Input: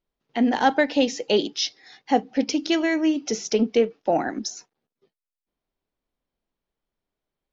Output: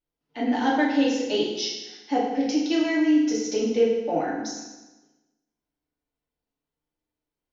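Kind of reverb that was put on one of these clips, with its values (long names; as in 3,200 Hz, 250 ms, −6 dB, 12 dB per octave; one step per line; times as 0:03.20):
feedback delay network reverb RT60 1.1 s, low-frequency decay 1.1×, high-frequency decay 0.9×, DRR −6 dB
level −10 dB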